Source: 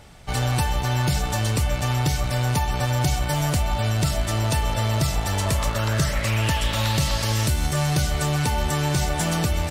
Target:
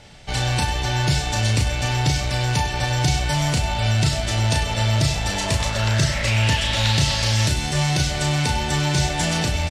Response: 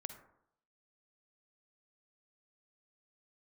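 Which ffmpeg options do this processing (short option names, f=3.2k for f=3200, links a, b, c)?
-filter_complex "[0:a]lowpass=6.3k,equalizer=f=1.2k:t=o:w=0.23:g=-7,bandreject=f=50:t=h:w=6,bandreject=f=100:t=h:w=6,acrossover=split=2100[a][b];[b]acontrast=47[c];[a][c]amix=inputs=2:normalize=0,aecho=1:1:34.99|99.13:0.562|0.251"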